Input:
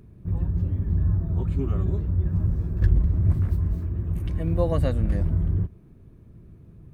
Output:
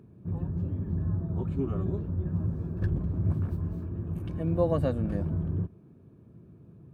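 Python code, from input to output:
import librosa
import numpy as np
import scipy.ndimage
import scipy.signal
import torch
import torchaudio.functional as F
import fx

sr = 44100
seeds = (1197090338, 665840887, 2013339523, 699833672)

y = scipy.signal.sosfilt(scipy.signal.butter(2, 130.0, 'highpass', fs=sr, output='sos'), x)
y = fx.high_shelf(y, sr, hz=2300.0, db=-10.0)
y = fx.notch(y, sr, hz=2000.0, q=5.8)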